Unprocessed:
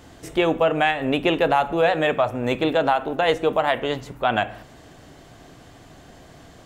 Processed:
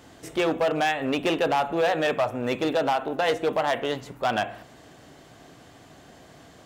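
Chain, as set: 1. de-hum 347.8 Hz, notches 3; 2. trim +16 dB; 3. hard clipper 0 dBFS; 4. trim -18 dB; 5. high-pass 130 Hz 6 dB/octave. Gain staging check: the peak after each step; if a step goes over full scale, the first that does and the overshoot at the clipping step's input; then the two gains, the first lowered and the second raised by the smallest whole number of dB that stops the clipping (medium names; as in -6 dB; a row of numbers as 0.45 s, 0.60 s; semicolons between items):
-7.5 dBFS, +8.5 dBFS, 0.0 dBFS, -18.0 dBFS, -15.0 dBFS; step 2, 8.5 dB; step 2 +7 dB, step 4 -9 dB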